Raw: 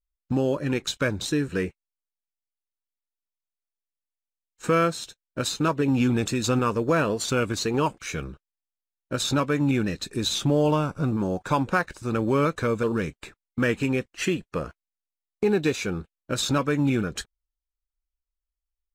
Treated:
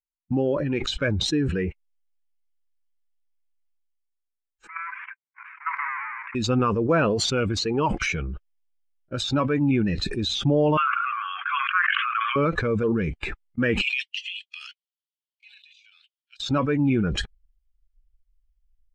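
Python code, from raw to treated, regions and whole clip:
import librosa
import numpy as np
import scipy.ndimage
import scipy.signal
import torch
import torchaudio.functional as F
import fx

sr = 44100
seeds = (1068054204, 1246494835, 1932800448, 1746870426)

y = fx.chain(x, sr, fx.halfwave_hold(),
    fx.ellip_bandpass(low_hz=1000.0, high_hz=2300.0, order=3, stop_db=40),
    fx.level_steps(step_db=12), at=(4.67, 6.35))
y = fx.chain(y, sr, fx.cheby1_bandpass(low_hz=1100.0, high_hz=3300.0, order=5),
    fx.env_flatten(amount_pct=70), at=(10.77, 12.36))
y = fx.chain(y, sr, fx.ladder_highpass(hz=2700.0, resonance_pct=45),
    fx.over_compress(threshold_db=-48.0, ratio=-0.5), at=(13.81, 16.4))
y = fx.bin_expand(y, sr, power=1.5)
y = scipy.signal.sosfilt(scipy.signal.butter(2, 3300.0, 'lowpass', fs=sr, output='sos'), y)
y = fx.sustainer(y, sr, db_per_s=21.0)
y = F.gain(torch.from_numpy(y), 2.5).numpy()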